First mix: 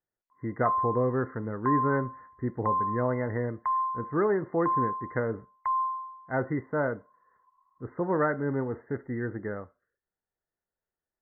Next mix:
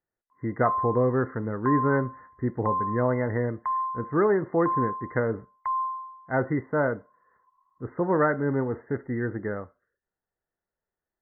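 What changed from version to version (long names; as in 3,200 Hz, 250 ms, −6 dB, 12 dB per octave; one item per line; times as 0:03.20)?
speech +3.5 dB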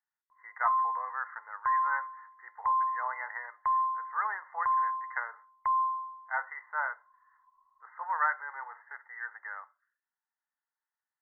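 speech: add elliptic high-pass filter 880 Hz, stop band 70 dB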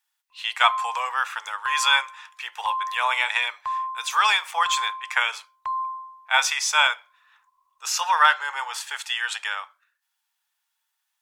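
speech +11.0 dB
master: remove linear-phase brick-wall low-pass 2,100 Hz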